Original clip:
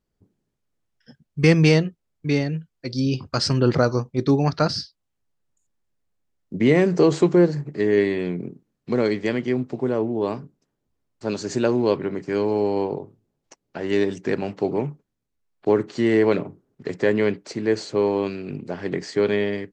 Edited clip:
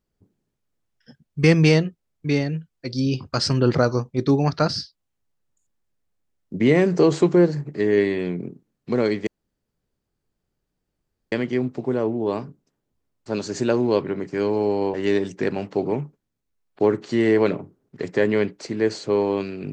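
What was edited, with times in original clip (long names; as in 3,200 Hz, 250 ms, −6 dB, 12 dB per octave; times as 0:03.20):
0:09.27: splice in room tone 2.05 s
0:12.89–0:13.80: remove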